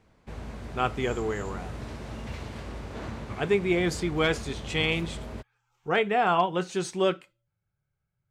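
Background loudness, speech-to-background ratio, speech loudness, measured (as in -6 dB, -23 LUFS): -39.5 LUFS, 12.0 dB, -27.5 LUFS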